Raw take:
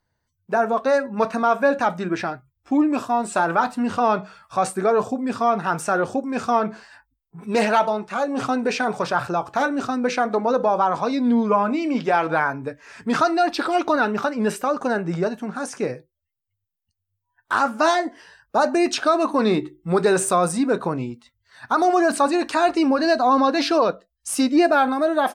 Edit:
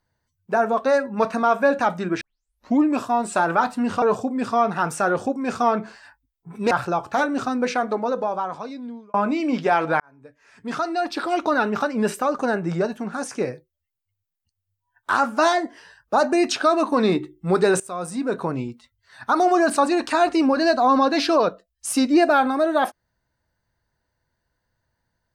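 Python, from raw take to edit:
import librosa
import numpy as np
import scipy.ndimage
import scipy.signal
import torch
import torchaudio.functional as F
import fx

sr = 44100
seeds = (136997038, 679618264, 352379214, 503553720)

y = fx.edit(x, sr, fx.tape_start(start_s=2.21, length_s=0.58),
    fx.cut(start_s=4.02, length_s=0.88),
    fx.cut(start_s=7.59, length_s=1.54),
    fx.fade_out_span(start_s=9.95, length_s=1.61),
    fx.fade_in_span(start_s=12.42, length_s=1.72),
    fx.fade_in_from(start_s=20.22, length_s=0.79, floor_db=-21.0), tone=tone)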